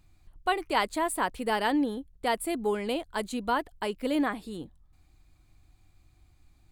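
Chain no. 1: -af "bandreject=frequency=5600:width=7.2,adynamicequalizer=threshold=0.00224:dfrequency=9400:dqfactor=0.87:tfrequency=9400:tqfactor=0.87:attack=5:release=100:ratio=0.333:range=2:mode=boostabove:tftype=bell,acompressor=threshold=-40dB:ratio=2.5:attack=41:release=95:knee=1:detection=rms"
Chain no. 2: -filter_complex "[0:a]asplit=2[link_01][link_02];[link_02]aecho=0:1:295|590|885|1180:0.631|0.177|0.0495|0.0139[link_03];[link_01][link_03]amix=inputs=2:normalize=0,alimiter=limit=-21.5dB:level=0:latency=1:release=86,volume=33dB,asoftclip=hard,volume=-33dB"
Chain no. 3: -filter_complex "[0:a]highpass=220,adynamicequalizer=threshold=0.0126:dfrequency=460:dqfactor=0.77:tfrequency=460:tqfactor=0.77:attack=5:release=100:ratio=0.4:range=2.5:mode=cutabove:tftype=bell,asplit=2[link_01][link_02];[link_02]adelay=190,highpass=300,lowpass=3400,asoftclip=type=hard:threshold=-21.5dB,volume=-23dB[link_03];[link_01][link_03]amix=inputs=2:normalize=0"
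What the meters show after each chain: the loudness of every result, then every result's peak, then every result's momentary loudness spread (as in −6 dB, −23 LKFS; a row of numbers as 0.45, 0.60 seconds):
−38.0, −36.5, −31.5 LKFS; −23.5, −33.0, −12.0 dBFS; 6, 7, 8 LU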